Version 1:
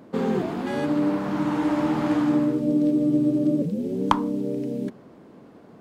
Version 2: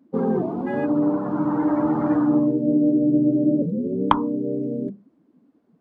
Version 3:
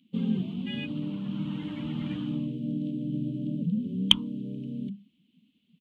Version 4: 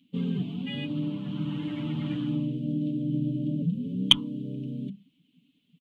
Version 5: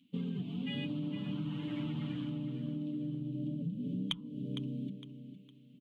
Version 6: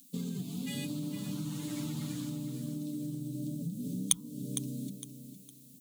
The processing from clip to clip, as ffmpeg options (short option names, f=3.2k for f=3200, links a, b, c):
-af "bandreject=f=50:t=h:w=6,bandreject=f=100:t=h:w=6,bandreject=f=150:t=h:w=6,bandreject=f=200:t=h:w=6,afftdn=nr=23:nf=-32,volume=2.5dB"
-af "firequalizer=gain_entry='entry(130,0);entry(200,5);entry(310,-14);entry(730,-22);entry(3000,10);entry(5000,-18)':delay=0.05:min_phase=1,aexciter=amount=5.6:drive=7.7:freq=2.4k,volume=-4.5dB"
-af "aecho=1:1:7:0.65"
-filter_complex "[0:a]acompressor=threshold=-30dB:ratio=16,asplit=2[a][b];[b]aecho=0:1:459|918|1377:0.299|0.0896|0.0269[c];[a][c]amix=inputs=2:normalize=0,volume=-3dB"
-af "aexciter=amount=15.9:drive=9.6:freq=4.9k"